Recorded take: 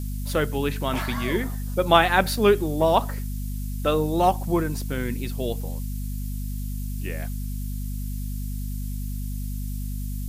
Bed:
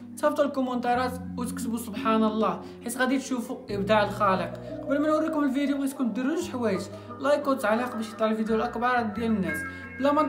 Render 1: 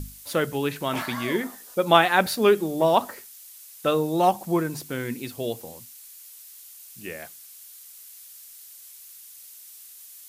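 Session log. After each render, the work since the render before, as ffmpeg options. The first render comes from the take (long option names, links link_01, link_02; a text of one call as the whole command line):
ffmpeg -i in.wav -af "bandreject=frequency=50:width_type=h:width=6,bandreject=frequency=100:width_type=h:width=6,bandreject=frequency=150:width_type=h:width=6,bandreject=frequency=200:width_type=h:width=6,bandreject=frequency=250:width_type=h:width=6" out.wav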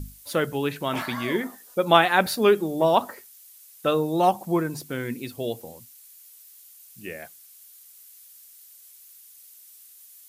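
ffmpeg -i in.wav -af "afftdn=noise_reduction=6:noise_floor=-46" out.wav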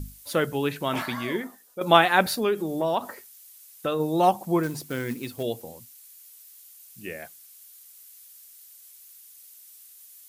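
ffmpeg -i in.wav -filter_complex "[0:a]asplit=3[link_01][link_02][link_03];[link_01]afade=type=out:start_time=2.38:duration=0.02[link_04];[link_02]acompressor=threshold=-25dB:ratio=2:attack=3.2:release=140:knee=1:detection=peak,afade=type=in:start_time=2.38:duration=0.02,afade=type=out:start_time=3.99:duration=0.02[link_05];[link_03]afade=type=in:start_time=3.99:duration=0.02[link_06];[link_04][link_05][link_06]amix=inputs=3:normalize=0,asettb=1/sr,asplit=3[link_07][link_08][link_09];[link_07]atrim=end=4.634[link_10];[link_08]atrim=start=4.63:end=5.43,asetpts=PTS-STARTPTS,afade=type=in:duration=0.004:curve=qsin,afade=type=out:start_time=0.796:duration=0.004:curve=qsin,acrusher=bits=4:mode=log:mix=0:aa=0.000001[link_11];[link_09]atrim=start=5.426[link_12];[link_10][link_11]acrossfade=duration=0.004:curve1=hsin:curve2=qsin[link_13];[link_13][link_12]acrossfade=duration=0.004:curve1=qsin:curve2=hsin,asplit=2[link_14][link_15];[link_14]atrim=end=1.81,asetpts=PTS-STARTPTS,afade=type=out:start_time=0.99:duration=0.82:silence=0.281838[link_16];[link_15]atrim=start=1.81,asetpts=PTS-STARTPTS,afade=type=in:duration=0.004:curve=hsin:silence=0.281838[link_17];[link_16][link_17]concat=n=2:v=0:a=1" out.wav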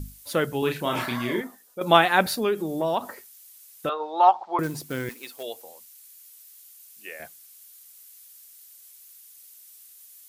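ffmpeg -i in.wav -filter_complex "[0:a]asettb=1/sr,asplit=3[link_01][link_02][link_03];[link_01]atrim=end=0.594[link_04];[link_02]atrim=start=0.59:end=1.41,asetpts=PTS-STARTPTS,afade=type=in:duration=0.004:curve=qsin,afade=type=out:start_time=0.816:duration=0.004:curve=qsin,asplit=2[link_05][link_06];[link_06]adelay=33,volume=-4dB[link_07];[link_05][link_07]amix=inputs=2:normalize=0,atrim=end_sample=36162[link_08];[link_03]atrim=start=1.406[link_09];[link_04][link_08]acrossfade=duration=0.004:curve1=hsin:curve2=qsin[link_10];[link_10][link_09]acrossfade=duration=0.004:curve1=qsin:curve2=hsin,asettb=1/sr,asplit=3[link_11][link_12][link_13];[link_11]atrim=end=3.894[link_14];[link_12]atrim=start=3.89:end=4.59,asetpts=PTS-STARTPTS,afade=type=in:duration=0.004:curve=qsin,afade=type=out:start_time=0.696:duration=0.004:curve=qsin,highpass=frequency=470:width=0.5412,highpass=frequency=470:width=1.3066,equalizer=frequency=530:width_type=q:width=4:gain=-7,equalizer=frequency=860:width_type=q:width=4:gain=9,equalizer=frequency=1300:width_type=q:width=4:gain=8,equalizer=frequency=2600:width_type=q:width=4:gain=-4,lowpass=frequency=4200:width=0.5412,lowpass=frequency=4200:width=1.3066[link_15];[link_13]atrim=start=4.586[link_16];[link_14][link_15]acrossfade=duration=0.004:curve1=hsin:curve2=qsin[link_17];[link_17][link_16]acrossfade=duration=0.004:curve1=qsin:curve2=hsin,asettb=1/sr,asplit=3[link_18][link_19][link_20];[link_18]atrim=end=5.094[link_21];[link_19]atrim=start=5.09:end=7.2,asetpts=PTS-STARTPTS,afade=type=in:duration=0.004:curve=qsin,afade=type=out:start_time=2.106:duration=0.004:curve=qsin,highpass=630[link_22];[link_20]atrim=start=7.196[link_23];[link_21][link_22]acrossfade=duration=0.004:curve1=hsin:curve2=qsin[link_24];[link_24][link_23]acrossfade=duration=0.004:curve1=qsin:curve2=hsin" out.wav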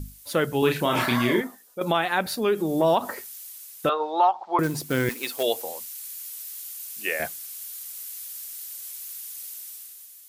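ffmpeg -i in.wav -af "dynaudnorm=framelen=130:gausssize=11:maxgain=12dB,alimiter=limit=-10.5dB:level=0:latency=1:release=327" out.wav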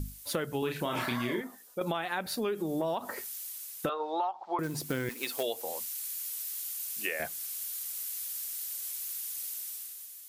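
ffmpeg -i in.wav -af "acompressor=threshold=-30dB:ratio=5" out.wav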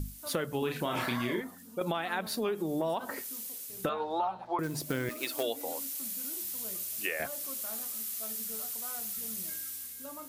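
ffmpeg -i in.wav -i bed.wav -filter_complex "[1:a]volume=-23.5dB[link_01];[0:a][link_01]amix=inputs=2:normalize=0" out.wav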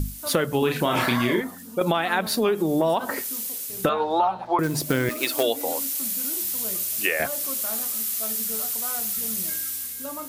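ffmpeg -i in.wav -af "volume=10dB" out.wav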